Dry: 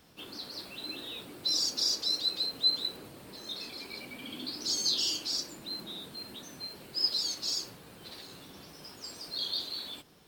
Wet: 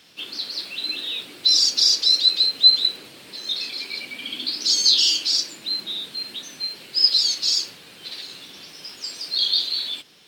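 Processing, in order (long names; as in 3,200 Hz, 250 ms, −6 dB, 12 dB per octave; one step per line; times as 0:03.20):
meter weighting curve D
level +2.5 dB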